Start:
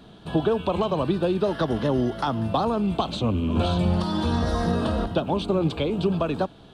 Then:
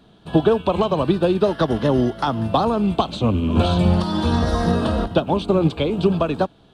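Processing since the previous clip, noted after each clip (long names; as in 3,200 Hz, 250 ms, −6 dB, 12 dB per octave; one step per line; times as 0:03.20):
expander for the loud parts 1.5 to 1, over −40 dBFS
level +7 dB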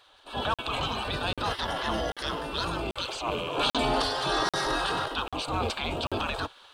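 gate on every frequency bin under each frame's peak −15 dB weak
transient designer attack −7 dB, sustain +6 dB
regular buffer underruns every 0.79 s, samples 2,048, zero, from 0:00.54
level +3 dB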